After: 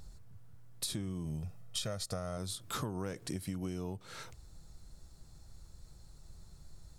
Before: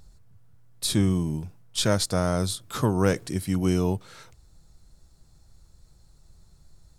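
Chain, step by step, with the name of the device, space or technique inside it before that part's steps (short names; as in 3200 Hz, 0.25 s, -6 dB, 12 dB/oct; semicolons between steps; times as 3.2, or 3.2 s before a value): 1.25–2.38 comb 1.6 ms, depth 58%; serial compression, leveller first (compressor 2.5:1, threshold -26 dBFS, peak gain reduction 7.5 dB; compressor 5:1, threshold -37 dBFS, peak gain reduction 13.5 dB); gain +1 dB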